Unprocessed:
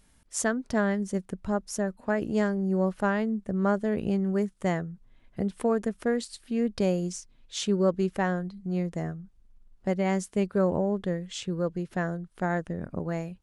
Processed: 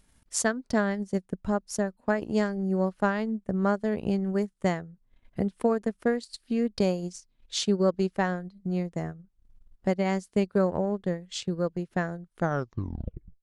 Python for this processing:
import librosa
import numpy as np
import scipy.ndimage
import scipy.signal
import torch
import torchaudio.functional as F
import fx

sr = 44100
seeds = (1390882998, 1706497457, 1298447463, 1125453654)

y = fx.tape_stop_end(x, sr, length_s=1.05)
y = fx.dynamic_eq(y, sr, hz=4500.0, q=3.0, threshold_db=-58.0, ratio=4.0, max_db=6)
y = fx.transient(y, sr, attack_db=4, sustain_db=-10)
y = y * 10.0 ** (-1.0 / 20.0)